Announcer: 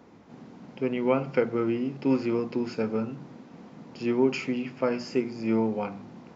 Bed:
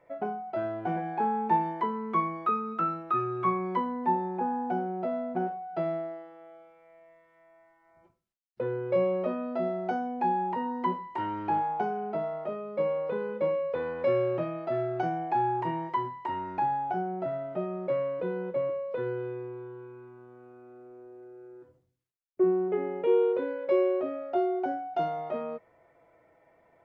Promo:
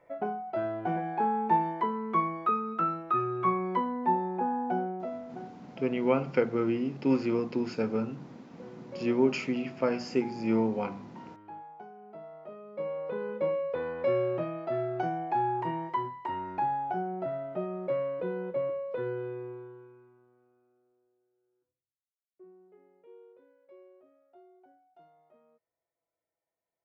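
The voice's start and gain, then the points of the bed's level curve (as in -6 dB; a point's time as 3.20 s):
5.00 s, -1.5 dB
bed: 4.83 s 0 dB
5.63 s -17.5 dB
11.92 s -17.5 dB
13.29 s -1.5 dB
19.51 s -1.5 dB
21.29 s -30 dB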